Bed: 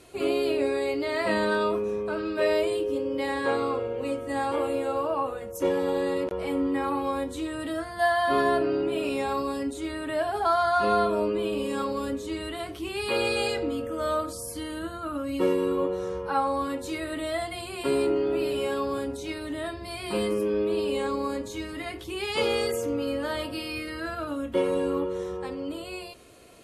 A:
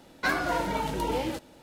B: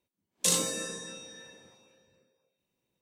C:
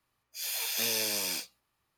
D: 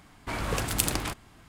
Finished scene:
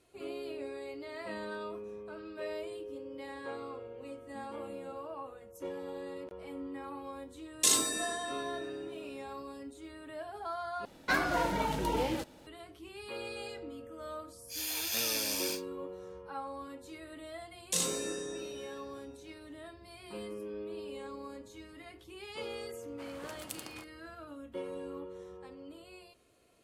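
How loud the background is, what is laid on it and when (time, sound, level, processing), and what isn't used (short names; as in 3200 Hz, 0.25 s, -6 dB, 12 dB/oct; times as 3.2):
bed -15.5 dB
3.56 add C -11.5 dB + synth low-pass 220 Hz, resonance Q 2.1
7.19 add B -2 dB + comb 2.9 ms, depth 78%
10.85 replace with A -2.5 dB
14.15 add C -2.5 dB + notch 2000 Hz, Q 28
17.28 add B -5.5 dB
22.71 add D -17 dB + HPF 190 Hz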